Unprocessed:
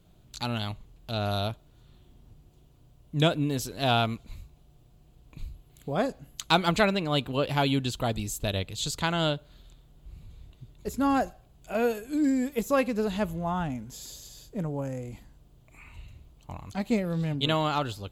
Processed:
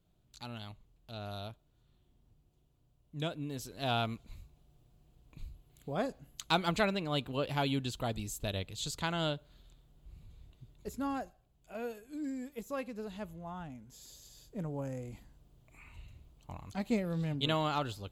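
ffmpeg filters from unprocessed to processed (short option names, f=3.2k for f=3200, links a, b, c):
-af "volume=1.5dB,afade=t=in:st=3.33:d=0.79:silence=0.473151,afade=t=out:st=10.77:d=0.46:silence=0.446684,afade=t=in:st=13.77:d=1.14:silence=0.375837"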